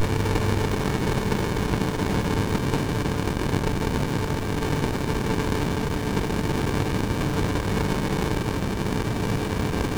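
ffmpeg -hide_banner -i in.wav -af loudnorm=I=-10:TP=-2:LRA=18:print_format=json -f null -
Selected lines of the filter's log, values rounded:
"input_i" : "-25.4",
"input_tp" : "-10.5",
"input_lra" : "1.0",
"input_thresh" : "-35.4",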